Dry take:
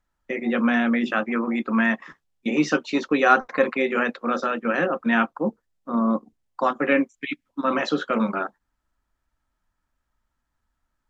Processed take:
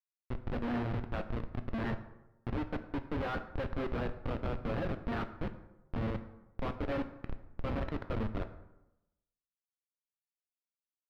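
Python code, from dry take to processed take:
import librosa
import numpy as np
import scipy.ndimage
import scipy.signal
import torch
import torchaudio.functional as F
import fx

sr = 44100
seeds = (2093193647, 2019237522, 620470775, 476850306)

y = fx.law_mismatch(x, sr, coded='mu')
y = scipy.signal.sosfilt(scipy.signal.butter(2, 290.0, 'highpass', fs=sr, output='sos'), y)
y = fx.schmitt(y, sr, flips_db=-20.0)
y = fx.air_absorb(y, sr, metres=370.0)
y = fx.rev_plate(y, sr, seeds[0], rt60_s=0.95, hf_ratio=0.55, predelay_ms=0, drr_db=8.5)
y = F.gain(torch.from_numpy(y), -7.0).numpy()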